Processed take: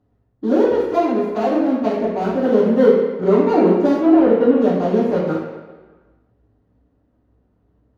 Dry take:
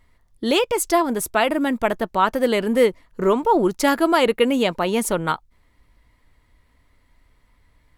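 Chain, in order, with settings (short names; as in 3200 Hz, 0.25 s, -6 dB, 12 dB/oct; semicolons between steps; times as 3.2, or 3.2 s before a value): median filter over 41 samples; 1.04–1.99 low shelf 170 Hz -9 dB; 3.97–4.61 LPF 2500 Hz 12 dB/oct; reverb RT60 1.4 s, pre-delay 3 ms, DRR -11 dB; gain -15.5 dB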